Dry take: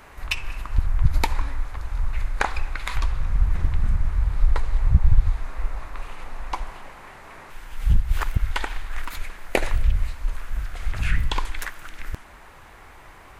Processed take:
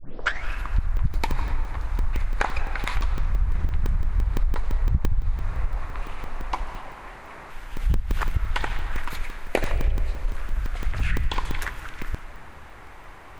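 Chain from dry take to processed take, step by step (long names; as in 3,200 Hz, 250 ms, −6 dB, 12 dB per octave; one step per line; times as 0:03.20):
turntable start at the beginning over 0.48 s
high-shelf EQ 5,300 Hz −6 dB
comb and all-pass reverb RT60 2 s, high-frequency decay 0.4×, pre-delay 120 ms, DRR 11.5 dB
downward compressor 4 to 1, threshold −19 dBFS, peak gain reduction 10 dB
regular buffer underruns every 0.17 s, samples 64, zero, from 0:00.97
level +1.5 dB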